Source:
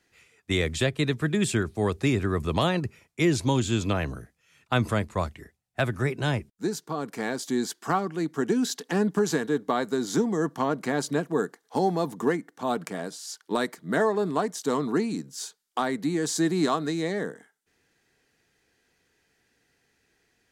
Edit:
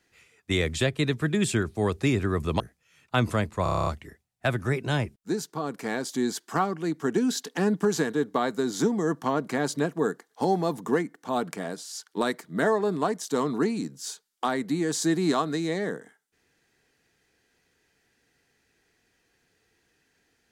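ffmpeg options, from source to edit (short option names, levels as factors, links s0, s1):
-filter_complex "[0:a]asplit=10[s0][s1][s2][s3][s4][s5][s6][s7][s8][s9];[s0]atrim=end=2.602[s10];[s1]atrim=start=4.178:end=5.242[s11];[s2]atrim=start=5.208:end=5.242[s12];[s3]atrim=start=5.208:end=5.242[s13];[s4]atrim=start=5.208:end=5.242[s14];[s5]atrim=start=5.208:end=5.242[s15];[s6]atrim=start=5.208:end=5.242[s16];[s7]atrim=start=5.208:end=5.242[s17];[s8]atrim=start=5.208:end=5.242[s18];[s9]atrim=start=5.208[s19];[s10][s11]acrossfade=d=0.004:c1=hsin:c2=hsin[s20];[s20][s12]acrossfade=d=0.004:c1=hsin:c2=hsin[s21];[s21][s13]acrossfade=d=0.004:c1=hsin:c2=hsin[s22];[s22][s14]acrossfade=d=0.004:c1=hsin:c2=hsin[s23];[s23][s15]acrossfade=d=0.004:c1=hsin:c2=hsin[s24];[s24][s16]acrossfade=d=0.004:c1=hsin:c2=hsin[s25];[s25][s17]acrossfade=d=0.004:c1=hsin:c2=hsin[s26];[s26][s18]acrossfade=d=0.004:c1=hsin:c2=hsin[s27];[s27][s19]acrossfade=d=0.004:c1=hsin:c2=hsin"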